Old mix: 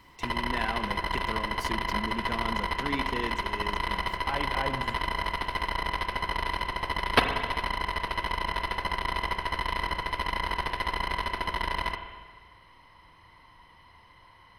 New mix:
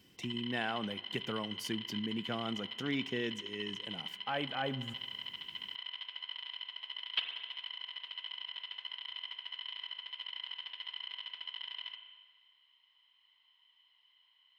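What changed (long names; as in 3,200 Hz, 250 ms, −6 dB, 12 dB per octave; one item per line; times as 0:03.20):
speech: send −11.0 dB
background: add resonant band-pass 3,100 Hz, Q 8.7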